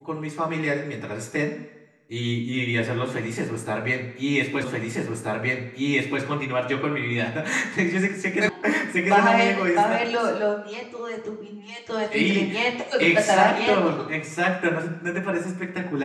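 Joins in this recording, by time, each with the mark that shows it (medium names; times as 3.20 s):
4.64 s: repeat of the last 1.58 s
8.49 s: sound stops dead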